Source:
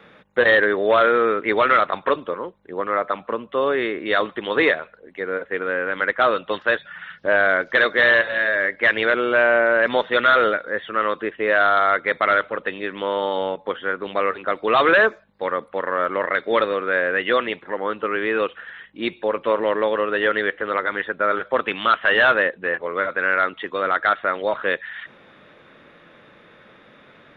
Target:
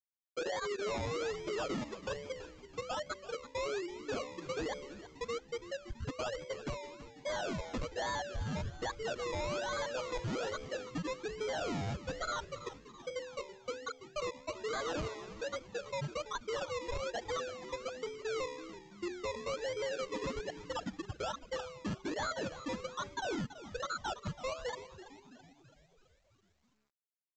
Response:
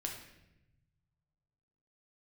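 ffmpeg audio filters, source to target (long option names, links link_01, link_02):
-filter_complex "[0:a]afftfilt=real='re*gte(hypot(re,im),0.631)':imag='im*gte(hypot(re,im),0.631)':win_size=1024:overlap=0.75,lowpass=3400,bandreject=frequency=72.23:width_type=h:width=4,bandreject=frequency=144.46:width_type=h:width=4,bandreject=frequency=216.69:width_type=h:width=4,bandreject=frequency=288.92:width_type=h:width=4,bandreject=frequency=361.15:width_type=h:width=4,bandreject=frequency=433.38:width_type=h:width=4,bandreject=frequency=505.61:width_type=h:width=4,bandreject=frequency=577.84:width_type=h:width=4,bandreject=frequency=650.07:width_type=h:width=4,acompressor=threshold=-36dB:ratio=4,acrusher=samples=23:mix=1:aa=0.000001:lfo=1:lforange=13.8:lforate=1.2,asoftclip=type=tanh:threshold=-37dB,asplit=2[link_01][link_02];[link_02]asplit=6[link_03][link_04][link_05][link_06][link_07][link_08];[link_03]adelay=331,afreqshift=-120,volume=-13.5dB[link_09];[link_04]adelay=662,afreqshift=-240,volume=-18.7dB[link_10];[link_05]adelay=993,afreqshift=-360,volume=-23.9dB[link_11];[link_06]adelay=1324,afreqshift=-480,volume=-29.1dB[link_12];[link_07]adelay=1655,afreqshift=-600,volume=-34.3dB[link_13];[link_08]adelay=1986,afreqshift=-720,volume=-39.5dB[link_14];[link_09][link_10][link_11][link_12][link_13][link_14]amix=inputs=6:normalize=0[link_15];[link_01][link_15]amix=inputs=2:normalize=0,volume=3.5dB" -ar 16000 -c:a pcm_mulaw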